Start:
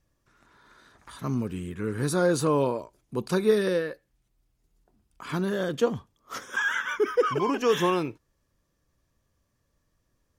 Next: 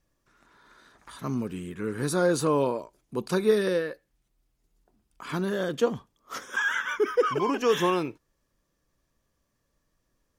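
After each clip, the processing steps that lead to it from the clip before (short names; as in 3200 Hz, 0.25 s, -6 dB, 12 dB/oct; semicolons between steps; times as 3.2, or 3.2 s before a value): bell 88 Hz -7.5 dB 1.1 oct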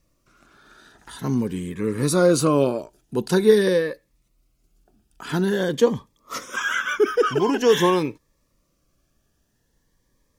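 cascading phaser rising 0.47 Hz; gain +7.5 dB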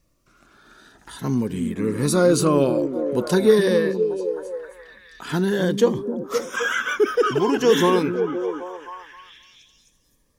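in parallel at -11.5 dB: soft clip -12.5 dBFS, distortion -15 dB; on the sum: delay with a stepping band-pass 0.26 s, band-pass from 240 Hz, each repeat 0.7 oct, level -3.5 dB; gain -1.5 dB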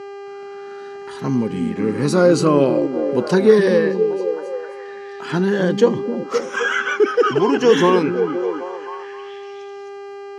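buzz 400 Hz, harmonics 21, -37 dBFS -9 dB/oct; BPF 120–5400 Hz; notch 3600 Hz, Q 8.1; gain +3.5 dB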